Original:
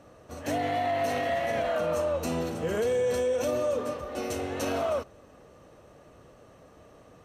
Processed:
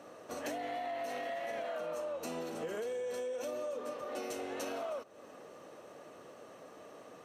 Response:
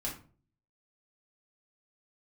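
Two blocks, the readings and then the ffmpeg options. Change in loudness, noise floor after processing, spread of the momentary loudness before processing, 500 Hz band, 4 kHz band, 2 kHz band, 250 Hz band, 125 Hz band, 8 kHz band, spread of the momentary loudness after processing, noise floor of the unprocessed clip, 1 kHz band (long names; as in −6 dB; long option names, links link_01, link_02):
−10.5 dB, −54 dBFS, 7 LU, −10.5 dB, −9.0 dB, −9.5 dB, −11.5 dB, −20.0 dB, −8.0 dB, 15 LU, −55 dBFS, −9.5 dB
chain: -af "highpass=270,acompressor=threshold=-40dB:ratio=6,volume=2.5dB"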